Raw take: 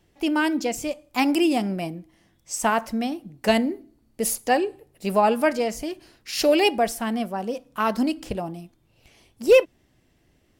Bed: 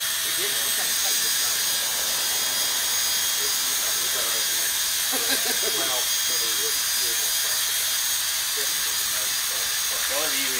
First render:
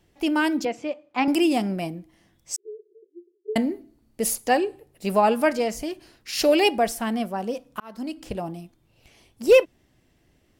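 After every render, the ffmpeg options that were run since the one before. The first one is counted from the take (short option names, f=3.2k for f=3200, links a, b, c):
-filter_complex "[0:a]asettb=1/sr,asplit=3[a][b][c];[a]atrim=end=0.654[d];[b]atrim=start=0.65:end=1.28,asetpts=PTS-STARTPTS,afade=t=in:d=0.004:c=qsin,afade=t=out:st=0.626:d=0.004:c=qsin,highpass=240,lowpass=2.7k[e];[c]atrim=start=1.276[f];[d][e]acrossfade=d=0.004:c1=hsin:c2=qsin[g];[g][f]acrossfade=d=0.004:c1=qsin:c2=hsin,asettb=1/sr,asplit=3[h][i][j];[h]atrim=end=2.564[k];[i]atrim=start=2.56:end=3.56,asetpts=PTS-STARTPTS,afade=t=in:d=0.004:c=qsin,afade=t=out:st=0.996:d=0.004:c=qsin,asuperpass=centerf=390:order=12:qfactor=4.3[l];[j]atrim=start=3.556[m];[k][l]acrossfade=d=0.004:c1=hsin:c2=qsin[n];[n][m]acrossfade=d=0.004:c1=qsin:c2=hsin,asplit=2[o][p];[o]atrim=end=7.8,asetpts=PTS-STARTPTS,afade=t=out:st=7.796:d=0.004:c=hsin[q];[p]atrim=start=7.8,asetpts=PTS-STARTPTS,afade=t=in:d=0.68[r];[q][r]concat=n=2:v=0:a=1"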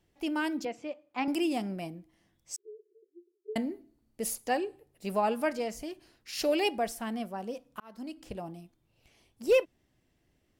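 -af "volume=-9dB"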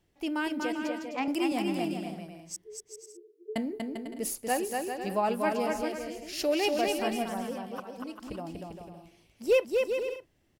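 -af "aecho=1:1:240|396|497.4|563.3|606.2:0.631|0.398|0.251|0.158|0.1"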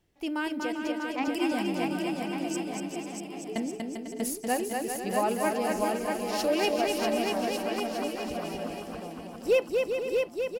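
-af "aecho=1:1:640|1152|1562|1889|2151:0.631|0.398|0.251|0.158|0.1"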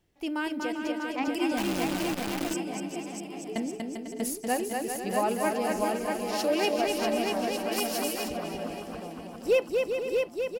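-filter_complex "[0:a]asettb=1/sr,asplit=3[a][b][c];[a]atrim=end=1.574[d];[b]atrim=start=1.57:end=2.54,asetpts=PTS-STARTPTS,afade=t=in:d=0.004:c=qsin,afade=t=out:st=0.966:d=0.004:c=qsin,acrusher=bits=6:dc=4:mix=0:aa=0.000001[e];[c]atrim=start=2.536[f];[d][e]acrossfade=d=0.004:c1=hsin:c2=qsin[g];[g][f]acrossfade=d=0.004:c1=qsin:c2=hsin,asettb=1/sr,asplit=3[h][i][j];[h]atrim=end=6.344[k];[i]atrim=start=6.34:end=6.79,asetpts=PTS-STARTPTS,afade=t=in:d=0.004:c=qsin,afade=t=out:st=0.446:d=0.004:c=qsin,highpass=82[l];[j]atrim=start=6.786[m];[k][l]acrossfade=d=0.004:c1=hsin:c2=qsin[n];[n][m]acrossfade=d=0.004:c1=qsin:c2=hsin,asplit=3[o][p][q];[o]afade=t=out:st=7.71:d=0.02[r];[p]aemphasis=mode=production:type=75kf,afade=t=in:st=7.71:d=0.02,afade=t=out:st=8.27:d=0.02[s];[q]afade=t=in:st=8.27:d=0.02[t];[r][s][t]amix=inputs=3:normalize=0"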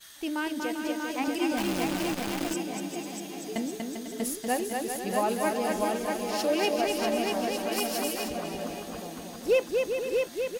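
-filter_complex "[1:a]volume=-24.5dB[a];[0:a][a]amix=inputs=2:normalize=0"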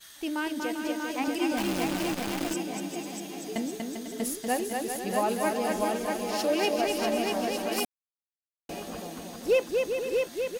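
-filter_complex "[0:a]asplit=3[a][b][c];[a]atrim=end=7.85,asetpts=PTS-STARTPTS,afade=t=out:st=7.846:d=0.004:c=hsin[d];[b]atrim=start=7.85:end=8.69,asetpts=PTS-STARTPTS,volume=0[e];[c]atrim=start=8.69,asetpts=PTS-STARTPTS,afade=t=in:d=0.004:c=hsin[f];[d][e][f]concat=n=3:v=0:a=1"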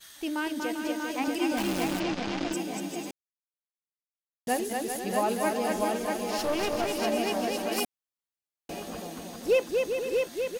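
-filter_complex "[0:a]asplit=3[a][b][c];[a]afade=t=out:st=1.99:d=0.02[d];[b]lowpass=f=5.8k:w=0.5412,lowpass=f=5.8k:w=1.3066,afade=t=in:st=1.99:d=0.02,afade=t=out:st=2.52:d=0.02[e];[c]afade=t=in:st=2.52:d=0.02[f];[d][e][f]amix=inputs=3:normalize=0,asettb=1/sr,asplit=3[g][h][i];[g]atrim=end=6.384[j];[h]atrim=start=6.38:end=7,asetpts=PTS-STARTPTS,afade=t=in:d=0.004:c=qsin,afade=t=out:st=0.616:d=0.004:c=qsin,aeval=exprs='clip(val(0),-1,0.0299)':c=same[k];[i]atrim=start=6.996[l];[j][k]acrossfade=d=0.004:c1=hsin:c2=qsin[m];[m][l]acrossfade=d=0.004:c1=qsin:c2=hsin,asplit=3[n][o][p];[n]atrim=end=3.11,asetpts=PTS-STARTPTS,afade=t=out:st=3.106:d=0.004:c=hsin[q];[o]atrim=start=3.11:end=4.47,asetpts=PTS-STARTPTS,volume=0[r];[p]atrim=start=4.47,asetpts=PTS-STARTPTS,afade=t=in:d=0.004:c=hsin[s];[q][r][s]concat=n=3:v=0:a=1"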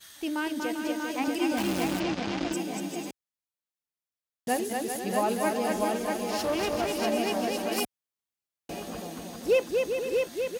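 -af "highpass=50,lowshelf=f=130:g=4.5"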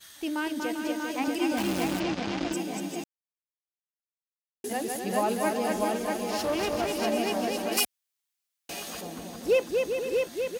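-filter_complex "[0:a]asettb=1/sr,asplit=3[a][b][c];[a]atrim=end=7.774[d];[b]atrim=start=7.77:end=9.01,asetpts=PTS-STARTPTS,afade=t=in:d=0.004:c=qsin,afade=t=out:st=1.236:d=0.004:c=qsin,tiltshelf=f=970:g=-8[e];[c]atrim=start=9.006[f];[d][e]acrossfade=d=0.004:c1=hsin:c2=qsin[g];[g][f]acrossfade=d=0.004:c1=qsin:c2=hsin,asplit=3[h][i][j];[h]atrim=end=3.04,asetpts=PTS-STARTPTS,afade=t=out:st=3.036:d=0.004:c=hsin[k];[i]atrim=start=3.04:end=4.64,asetpts=PTS-STARTPTS,volume=0[l];[j]atrim=start=4.64,asetpts=PTS-STARTPTS,afade=t=in:d=0.004:c=hsin[m];[k][l][m]concat=n=3:v=0:a=1"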